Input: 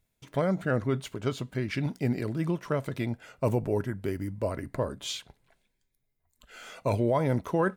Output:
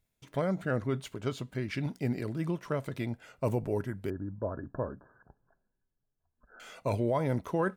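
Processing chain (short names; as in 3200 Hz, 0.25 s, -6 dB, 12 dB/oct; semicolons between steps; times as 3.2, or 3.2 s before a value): 4.1–6.6 Chebyshev low-pass 1700 Hz, order 10; gain -3.5 dB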